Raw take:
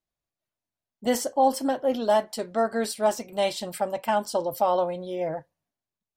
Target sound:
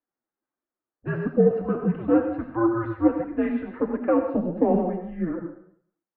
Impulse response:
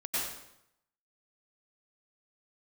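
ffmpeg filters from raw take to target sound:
-filter_complex "[0:a]acontrast=44,highpass=f=540:t=q:w=0.5412,highpass=f=540:t=q:w=1.307,lowpass=f=2.1k:t=q:w=0.5176,lowpass=f=2.1k:t=q:w=0.7071,lowpass=f=2.1k:t=q:w=1.932,afreqshift=-340,asplit=2[a][b];[1:a]atrim=start_sample=2205,asetrate=57330,aresample=44100[c];[b][c]afir=irnorm=-1:irlink=0,volume=-7dB[d];[a][d]amix=inputs=2:normalize=0,flanger=delay=2.7:depth=8.6:regen=37:speed=1.5:shape=triangular"

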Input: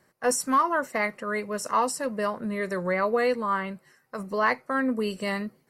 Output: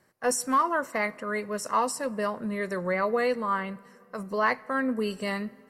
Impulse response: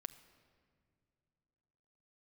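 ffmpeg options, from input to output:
-filter_complex "[0:a]asplit=2[a][b];[1:a]atrim=start_sample=2205,asetrate=29547,aresample=44100[c];[b][c]afir=irnorm=-1:irlink=0,volume=-5dB[d];[a][d]amix=inputs=2:normalize=0,volume=-4.5dB"

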